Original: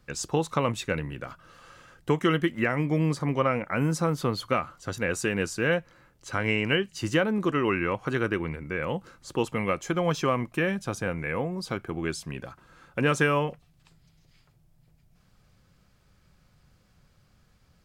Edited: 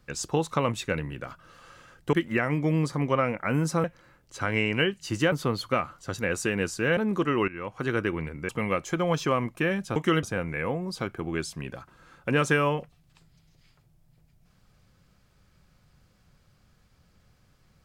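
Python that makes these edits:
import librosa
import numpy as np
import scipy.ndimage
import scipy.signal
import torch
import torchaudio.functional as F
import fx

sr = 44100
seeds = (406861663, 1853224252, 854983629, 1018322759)

y = fx.edit(x, sr, fx.move(start_s=2.13, length_s=0.27, to_s=10.93),
    fx.move(start_s=5.76, length_s=1.48, to_s=4.11),
    fx.fade_in_from(start_s=7.75, length_s=0.46, floor_db=-17.0),
    fx.cut(start_s=8.76, length_s=0.7), tone=tone)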